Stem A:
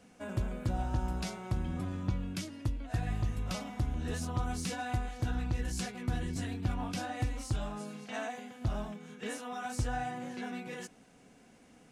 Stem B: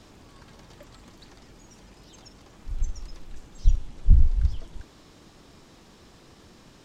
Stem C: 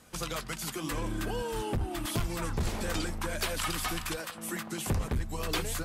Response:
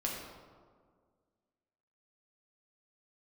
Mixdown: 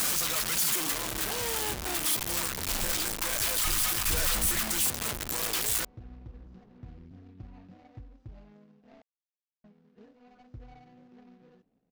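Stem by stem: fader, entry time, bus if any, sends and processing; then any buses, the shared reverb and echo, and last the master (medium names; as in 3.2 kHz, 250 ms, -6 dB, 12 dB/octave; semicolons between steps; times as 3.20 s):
-13.0 dB, 0.75 s, muted 9.02–9.64 s, no send, median filter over 41 samples; low-pass 5.8 kHz 24 dB/octave
-9.0 dB, 0.00 s, no send, low-pass 1 kHz 12 dB/octave; overload inside the chain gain 21 dB
0.0 dB, 0.00 s, no send, one-bit comparator; tilt EQ +2.5 dB/octave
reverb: none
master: none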